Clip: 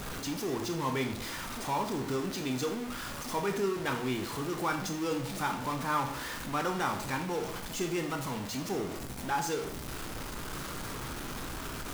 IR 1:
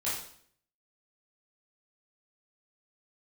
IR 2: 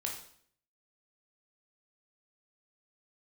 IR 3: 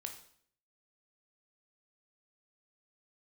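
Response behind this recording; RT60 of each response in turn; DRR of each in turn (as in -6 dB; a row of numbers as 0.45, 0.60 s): 3; 0.60, 0.60, 0.60 s; -10.0, -0.5, 4.0 dB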